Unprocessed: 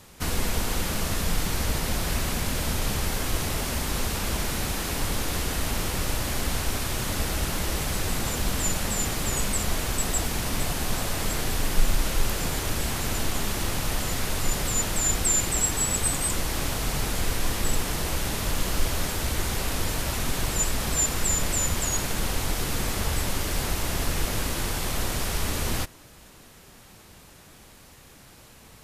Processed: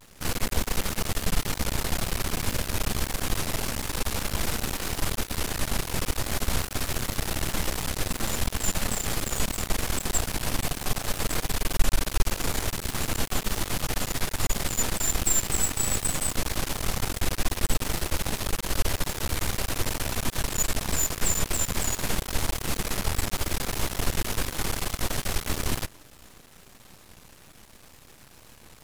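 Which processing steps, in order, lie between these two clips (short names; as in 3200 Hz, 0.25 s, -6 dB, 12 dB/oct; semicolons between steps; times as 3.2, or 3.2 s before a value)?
vibrato 0.47 Hz 36 cents; half-wave rectifier; gain +2.5 dB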